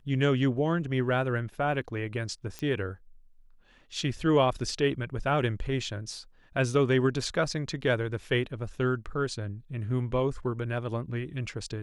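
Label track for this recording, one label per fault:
2.590000	2.590000	pop -21 dBFS

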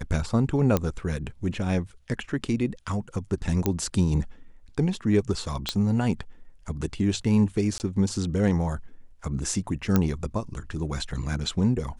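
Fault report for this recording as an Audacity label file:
0.770000	0.770000	pop -9 dBFS
3.660000	3.660000	pop -9 dBFS
5.690000	5.690000	pop -10 dBFS
7.780000	7.800000	gap 19 ms
9.960000	9.960000	pop -8 dBFS

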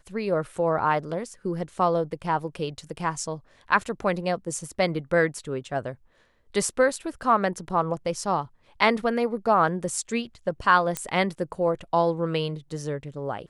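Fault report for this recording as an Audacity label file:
10.970000	10.970000	pop -11 dBFS

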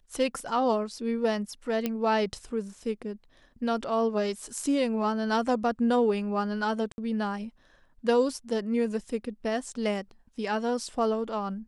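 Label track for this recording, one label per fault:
1.860000	1.860000	pop -14 dBFS
6.920000	6.980000	gap 61 ms

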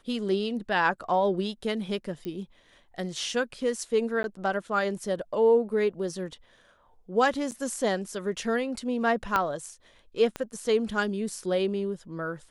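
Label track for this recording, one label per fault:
2.250000	2.250000	pop -25 dBFS
4.230000	4.240000	gap
7.510000	7.520000	gap 8.6 ms
9.360000	9.360000	pop -12 dBFS
10.360000	10.360000	pop -18 dBFS

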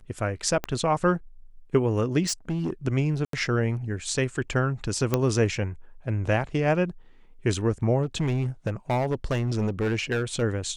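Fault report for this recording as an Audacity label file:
0.640000	0.640000	pop -14 dBFS
2.260000	2.730000	clipped -23 dBFS
3.250000	3.330000	gap 83 ms
5.140000	5.140000	pop -8 dBFS
8.020000	10.430000	clipped -20.5 dBFS

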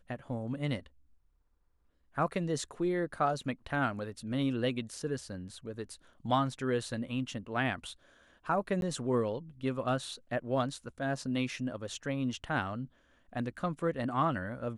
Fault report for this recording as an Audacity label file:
8.810000	8.820000	gap 12 ms

